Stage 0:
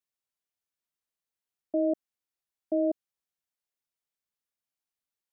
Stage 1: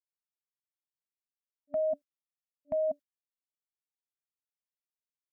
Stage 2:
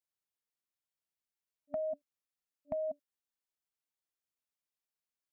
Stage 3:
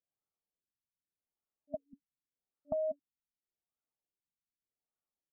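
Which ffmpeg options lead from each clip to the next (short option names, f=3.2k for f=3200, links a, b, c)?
-af "agate=range=-22dB:threshold=-39dB:ratio=16:detection=peak,afftfilt=real='re*(1-between(b*sr/4096,290,590))':imag='im*(1-between(b*sr/4096,290,590))':win_size=4096:overlap=0.75"
-af "acompressor=threshold=-34dB:ratio=6"
-af "asuperstop=centerf=1000:order=8:qfactor=7.3,afftfilt=real='re*lt(b*sr/1024,250*pow(1500/250,0.5+0.5*sin(2*PI*0.85*pts/sr)))':imag='im*lt(b*sr/1024,250*pow(1500/250,0.5+0.5*sin(2*PI*0.85*pts/sr)))':win_size=1024:overlap=0.75,volume=2dB"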